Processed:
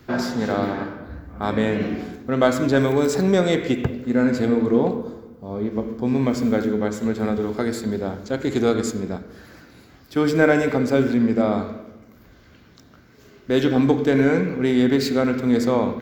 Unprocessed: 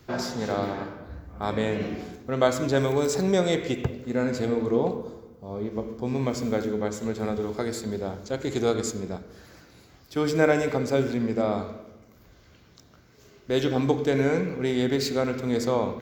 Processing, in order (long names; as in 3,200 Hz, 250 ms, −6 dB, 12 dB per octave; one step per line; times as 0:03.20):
graphic EQ with 15 bands 250 Hz +6 dB, 1,600 Hz +4 dB, 6,300 Hz −4 dB
in parallel at −10.5 dB: hard clipping −15.5 dBFS, distortion −15 dB
on the sum: level +1 dB